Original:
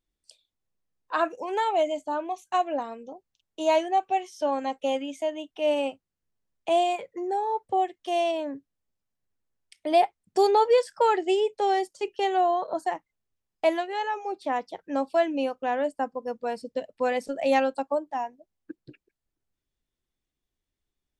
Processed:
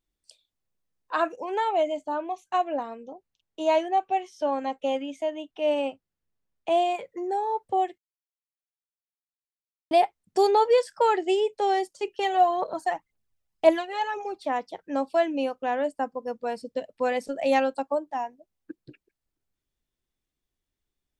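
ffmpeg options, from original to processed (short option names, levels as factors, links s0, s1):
-filter_complex "[0:a]asettb=1/sr,asplit=3[s0][s1][s2];[s0]atrim=end=1.364[s3];[s1]atrim=start=1.36:end=6.95,asetpts=PTS-STARTPTS,afade=t=in:d=0.004:c=qsin,afade=t=out:st=5.586:d=0.004:c=qsin,lowpass=f=4000:p=1[s4];[s2]atrim=start=6.946[s5];[s3][s4]acrossfade=d=0.004:c1=hsin:c2=qsin[s6];[s6][s5]acrossfade=d=0.004:c1=qsin:c2=hsin,asplit=3[s7][s8][s9];[s7]afade=t=out:st=12.2:d=0.02[s10];[s8]aphaser=in_gain=1:out_gain=1:delay=1.7:decay=0.51:speed=1.9:type=triangular,afade=t=in:st=12.2:d=0.02,afade=t=out:st=14.46:d=0.02[s11];[s9]afade=t=in:st=14.46:d=0.02[s12];[s10][s11][s12]amix=inputs=3:normalize=0,asplit=3[s13][s14][s15];[s13]atrim=end=7.98,asetpts=PTS-STARTPTS,afade=t=out:st=7.976:d=0.004:c=hsin[s16];[s14]atrim=start=7.98:end=9.91,asetpts=PTS-STARTPTS,volume=0[s17];[s15]atrim=start=9.91,asetpts=PTS-STARTPTS,afade=t=in:d=0.004:c=hsin[s18];[s16][s17][s18]concat=n=3:v=0:a=1"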